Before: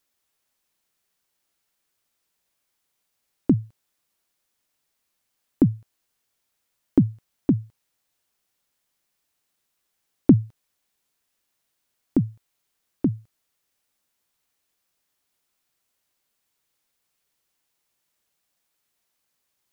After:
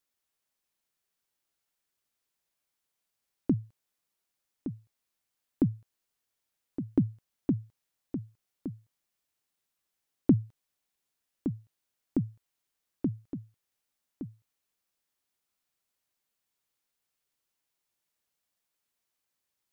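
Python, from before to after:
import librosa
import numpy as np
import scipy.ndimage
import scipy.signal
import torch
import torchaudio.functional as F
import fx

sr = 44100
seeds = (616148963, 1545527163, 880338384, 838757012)

y = x + 10.0 ** (-10.0 / 20.0) * np.pad(x, (int(1166 * sr / 1000.0), 0))[:len(x)]
y = y * librosa.db_to_amplitude(-8.0)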